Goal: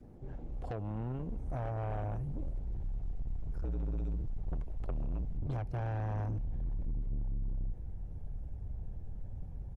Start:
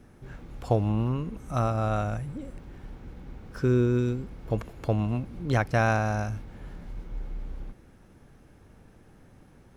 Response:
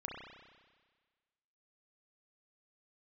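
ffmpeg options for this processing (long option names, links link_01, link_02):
-filter_complex "[0:a]asplit=3[link_01][link_02][link_03];[link_01]afade=type=out:start_time=2.83:duration=0.02[link_04];[link_02]afreqshift=-69,afade=type=in:start_time=2.83:duration=0.02,afade=type=out:start_time=5.45:duration=0.02[link_05];[link_03]afade=type=in:start_time=5.45:duration=0.02[link_06];[link_04][link_05][link_06]amix=inputs=3:normalize=0,alimiter=limit=-17.5dB:level=0:latency=1:release=482,firequalizer=gain_entry='entry(750,0);entry(1200,-14);entry(2700,-14);entry(5300,-16)':delay=0.05:min_phase=1,acrossover=split=160|650[link_07][link_08][link_09];[link_07]acompressor=threshold=-44dB:ratio=4[link_10];[link_08]acompressor=threshold=-34dB:ratio=4[link_11];[link_09]acompressor=threshold=-38dB:ratio=4[link_12];[link_10][link_11][link_12]amix=inputs=3:normalize=0,asubboost=boost=11.5:cutoff=80,asoftclip=type=tanh:threshold=-33dB,volume=1dB" -ar 48000 -c:a libopus -b:a 20k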